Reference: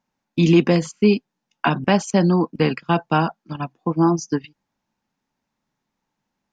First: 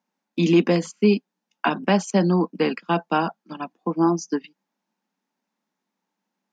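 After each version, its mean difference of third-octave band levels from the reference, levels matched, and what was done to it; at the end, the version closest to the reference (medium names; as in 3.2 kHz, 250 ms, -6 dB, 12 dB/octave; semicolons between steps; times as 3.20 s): 1.5 dB: elliptic high-pass 180 Hz, stop band 40 dB; trim -1.5 dB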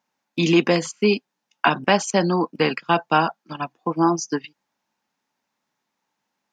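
3.0 dB: high-pass 540 Hz 6 dB/octave; trim +3.5 dB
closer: first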